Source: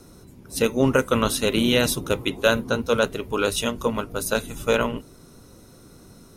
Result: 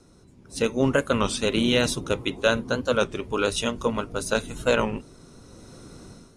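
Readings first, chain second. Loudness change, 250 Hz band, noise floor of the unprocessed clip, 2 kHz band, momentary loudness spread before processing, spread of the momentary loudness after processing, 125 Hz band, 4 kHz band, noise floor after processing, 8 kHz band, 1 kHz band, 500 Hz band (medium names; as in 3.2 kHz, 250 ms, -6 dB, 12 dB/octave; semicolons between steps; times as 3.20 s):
-2.0 dB, -2.0 dB, -49 dBFS, -1.5 dB, 7 LU, 6 LU, -2.0 dB, -1.5 dB, -54 dBFS, -3.5 dB, -2.0 dB, -2.0 dB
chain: low-pass 9.1 kHz 24 dB/octave; level rider gain up to 11.5 dB; warped record 33 1/3 rpm, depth 160 cents; trim -7 dB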